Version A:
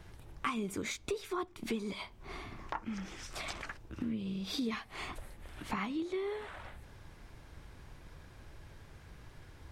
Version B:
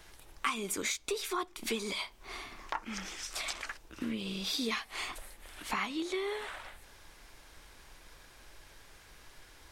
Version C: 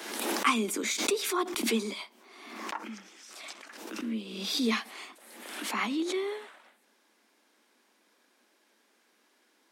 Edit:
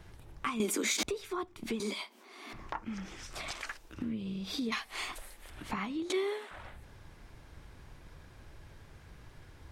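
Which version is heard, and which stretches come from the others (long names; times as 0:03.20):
A
0:00.60–0:01.03: punch in from C
0:01.80–0:02.53: punch in from C
0:03.51–0:03.94: punch in from B
0:04.72–0:05.50: punch in from B
0:06.10–0:06.51: punch in from C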